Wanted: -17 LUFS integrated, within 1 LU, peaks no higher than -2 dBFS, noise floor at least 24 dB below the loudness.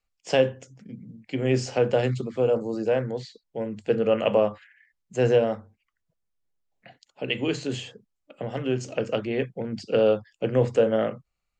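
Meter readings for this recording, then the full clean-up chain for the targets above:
loudness -25.5 LUFS; peak -8.5 dBFS; loudness target -17.0 LUFS
-> gain +8.5 dB; limiter -2 dBFS

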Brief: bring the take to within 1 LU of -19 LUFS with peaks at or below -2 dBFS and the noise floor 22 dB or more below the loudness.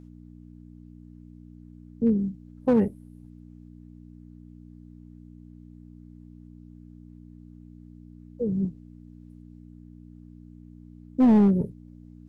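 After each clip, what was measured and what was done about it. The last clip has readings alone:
clipped 0.7%; flat tops at -14.0 dBFS; hum 60 Hz; harmonics up to 300 Hz; hum level -46 dBFS; loudness -24.0 LUFS; peak -14.0 dBFS; loudness target -19.0 LUFS
-> clip repair -14 dBFS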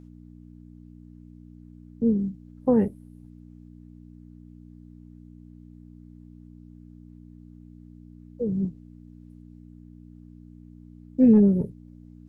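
clipped 0.0%; hum 60 Hz; harmonics up to 300 Hz; hum level -46 dBFS
-> de-hum 60 Hz, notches 5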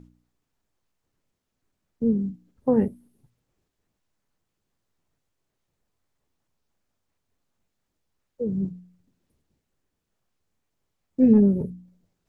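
hum none; loudness -23.0 LUFS; peak -7.5 dBFS; loudness target -19.0 LUFS
-> gain +4 dB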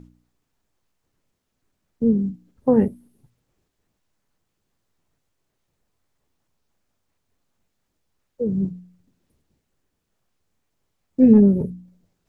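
loudness -19.0 LUFS; peak -3.5 dBFS; noise floor -77 dBFS

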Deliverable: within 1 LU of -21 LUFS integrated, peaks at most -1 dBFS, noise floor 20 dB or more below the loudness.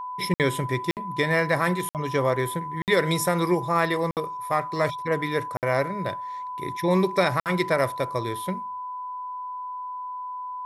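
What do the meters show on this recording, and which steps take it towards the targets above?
dropouts 7; longest dropout 58 ms; steady tone 1000 Hz; tone level -31 dBFS; loudness -26.0 LUFS; peak -7.0 dBFS; loudness target -21.0 LUFS
-> interpolate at 0.34/0.91/1.89/2.82/4.11/5.57/7.4, 58 ms; notch 1000 Hz, Q 30; gain +5 dB

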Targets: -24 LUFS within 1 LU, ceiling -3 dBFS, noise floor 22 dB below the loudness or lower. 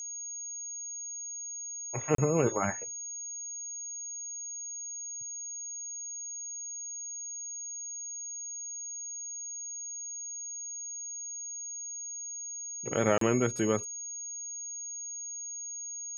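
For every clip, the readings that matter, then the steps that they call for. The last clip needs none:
dropouts 2; longest dropout 33 ms; steady tone 6600 Hz; tone level -37 dBFS; loudness -34.5 LUFS; peak -11.5 dBFS; loudness target -24.0 LUFS
-> interpolate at 2.15/13.18, 33 ms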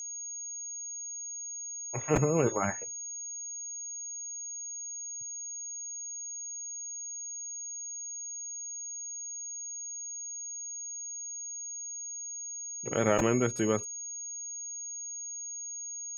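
dropouts 0; steady tone 6600 Hz; tone level -37 dBFS
-> notch 6600 Hz, Q 30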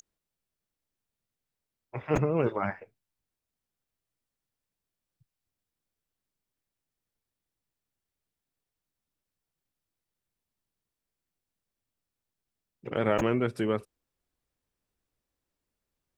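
steady tone none; loudness -29.0 LUFS; peak -12.0 dBFS; loudness target -24.0 LUFS
-> gain +5 dB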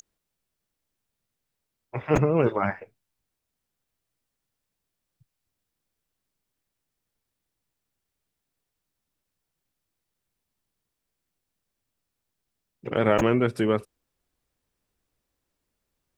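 loudness -24.0 LUFS; peak -7.0 dBFS; noise floor -83 dBFS

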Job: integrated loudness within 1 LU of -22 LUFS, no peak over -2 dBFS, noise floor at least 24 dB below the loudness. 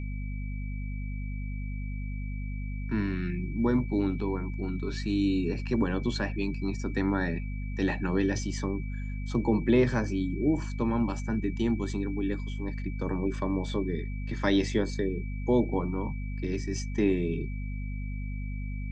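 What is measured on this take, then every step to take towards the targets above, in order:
hum 50 Hz; harmonics up to 250 Hz; hum level -31 dBFS; steady tone 2300 Hz; tone level -48 dBFS; loudness -30.5 LUFS; peak -12.5 dBFS; loudness target -22.0 LUFS
-> de-hum 50 Hz, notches 5; notch 2300 Hz, Q 30; gain +8.5 dB

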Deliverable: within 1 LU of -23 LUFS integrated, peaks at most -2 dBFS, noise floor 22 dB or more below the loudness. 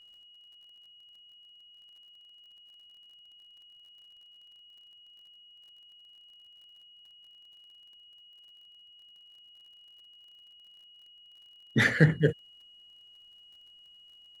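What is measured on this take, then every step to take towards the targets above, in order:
ticks 37/s; steady tone 2900 Hz; tone level -53 dBFS; loudness -26.0 LUFS; peak -7.0 dBFS; loudness target -23.0 LUFS
-> de-click; notch 2900 Hz, Q 30; gain +3 dB

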